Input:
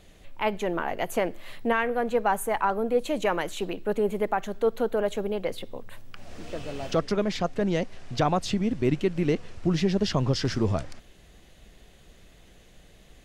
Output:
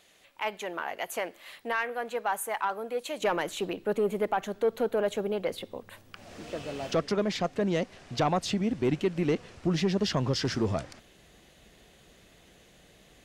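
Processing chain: high-pass 1.1 kHz 6 dB/octave, from 3.21 s 140 Hz; saturation -17 dBFS, distortion -19 dB

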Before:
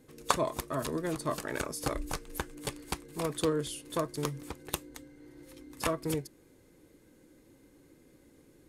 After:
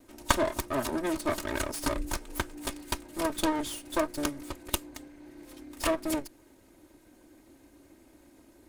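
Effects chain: comb filter that takes the minimum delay 3.2 ms; trim +4 dB

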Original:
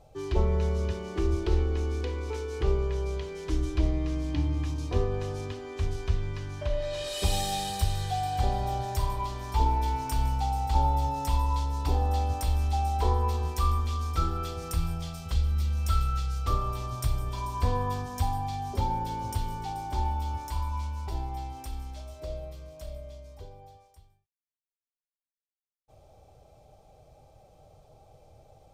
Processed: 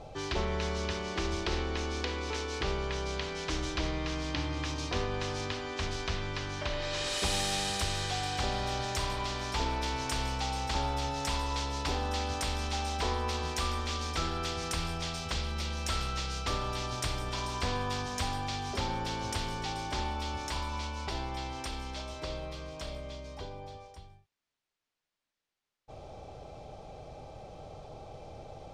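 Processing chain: low-pass 5 kHz 12 dB/octave; spectrum-flattening compressor 2:1; trim -4.5 dB

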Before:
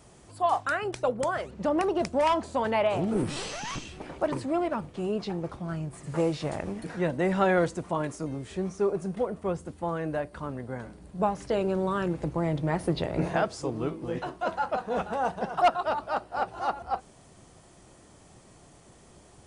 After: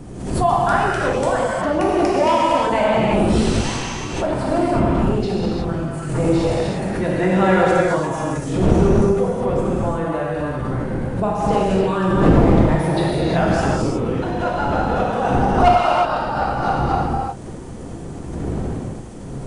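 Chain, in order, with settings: wind noise 280 Hz -33 dBFS; gated-style reverb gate 390 ms flat, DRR -6 dB; swell ahead of each attack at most 62 dB/s; trim +2.5 dB

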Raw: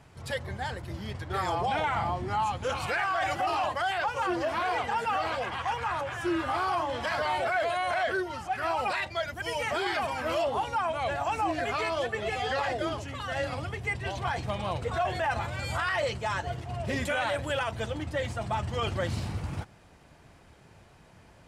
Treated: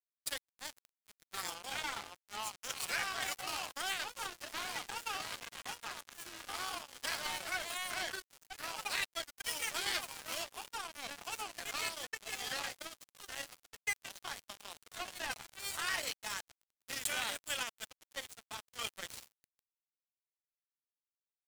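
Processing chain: pre-emphasis filter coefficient 0.97; crossover distortion -44 dBFS; trim +12 dB

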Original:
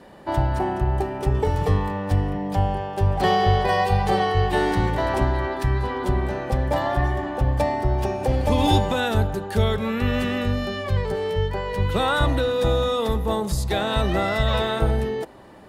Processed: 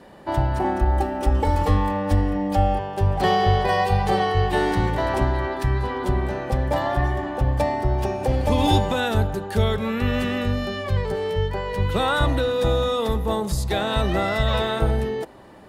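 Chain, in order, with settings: 0.64–2.79 s: comb 3.6 ms, depth 99%

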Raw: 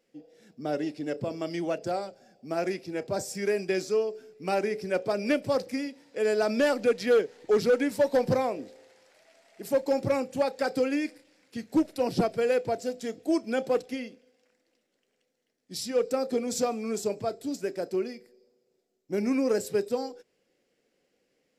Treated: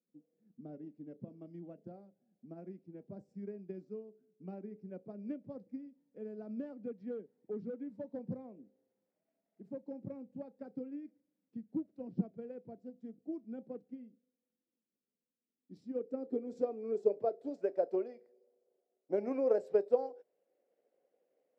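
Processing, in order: transient shaper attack +5 dB, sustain -2 dB; differentiator; low-pass sweep 200 Hz -> 610 Hz, 15.29–17.73 s; trim +14 dB

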